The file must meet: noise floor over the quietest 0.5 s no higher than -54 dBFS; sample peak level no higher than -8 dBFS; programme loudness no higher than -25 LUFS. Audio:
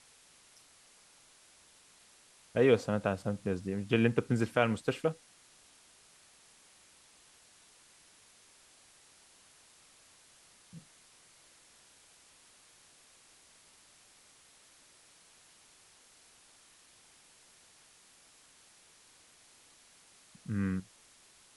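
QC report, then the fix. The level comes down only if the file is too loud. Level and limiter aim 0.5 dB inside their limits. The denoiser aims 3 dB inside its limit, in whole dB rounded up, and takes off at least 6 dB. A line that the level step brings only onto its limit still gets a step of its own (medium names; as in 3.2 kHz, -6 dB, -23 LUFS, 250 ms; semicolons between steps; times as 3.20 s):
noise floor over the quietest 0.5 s -62 dBFS: pass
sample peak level -11.5 dBFS: pass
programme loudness -31.5 LUFS: pass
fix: none needed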